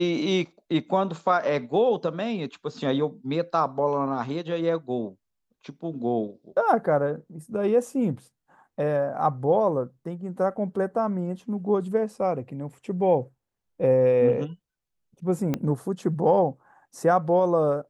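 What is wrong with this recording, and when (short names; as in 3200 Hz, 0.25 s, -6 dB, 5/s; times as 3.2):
15.54 pop -13 dBFS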